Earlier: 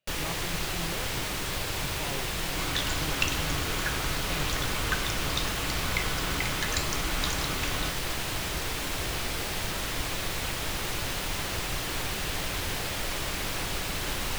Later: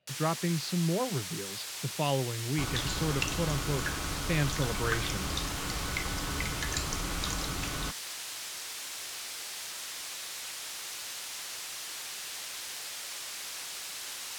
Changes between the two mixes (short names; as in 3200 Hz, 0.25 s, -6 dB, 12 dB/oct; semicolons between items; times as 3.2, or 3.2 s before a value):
speech +11.0 dB; first sound: add band-pass 6000 Hz, Q 0.59; master: add bell 2900 Hz -5 dB 1.8 oct